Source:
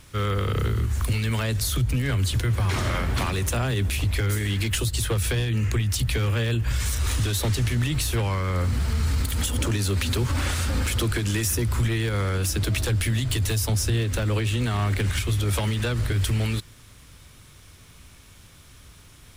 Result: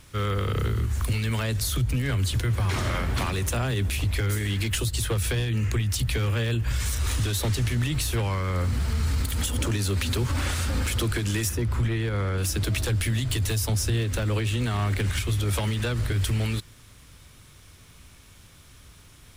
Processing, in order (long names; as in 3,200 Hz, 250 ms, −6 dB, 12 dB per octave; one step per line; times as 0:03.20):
0:11.49–0:12.38: high-shelf EQ 4,100 Hz −11 dB
level −1.5 dB